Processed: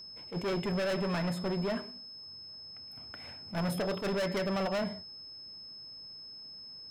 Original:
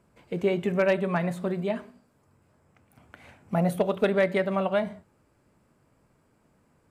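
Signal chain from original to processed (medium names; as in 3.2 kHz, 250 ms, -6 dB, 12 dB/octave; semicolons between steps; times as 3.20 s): hard clipper -29.5 dBFS, distortion -5 dB; whistle 5.2 kHz -45 dBFS; attacks held to a fixed rise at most 230 dB/s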